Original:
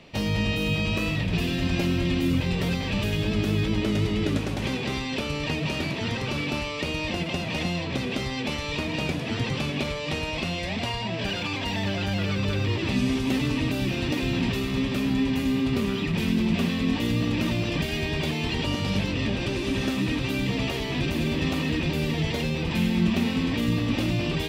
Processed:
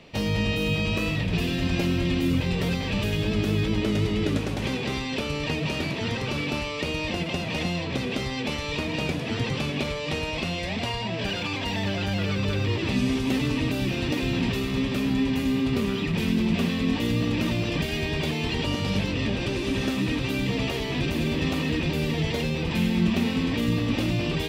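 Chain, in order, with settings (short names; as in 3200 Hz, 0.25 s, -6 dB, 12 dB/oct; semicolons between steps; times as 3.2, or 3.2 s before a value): bell 460 Hz +3 dB 0.22 oct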